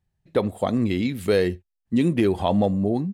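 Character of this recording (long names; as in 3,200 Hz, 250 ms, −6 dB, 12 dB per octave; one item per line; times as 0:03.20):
background noise floor −80 dBFS
spectral slope −6.5 dB per octave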